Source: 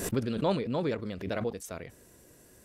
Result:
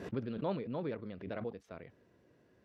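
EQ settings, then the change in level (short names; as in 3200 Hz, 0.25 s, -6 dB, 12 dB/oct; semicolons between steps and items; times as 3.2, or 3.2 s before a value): HPF 90 Hz; air absorption 280 m; -7.0 dB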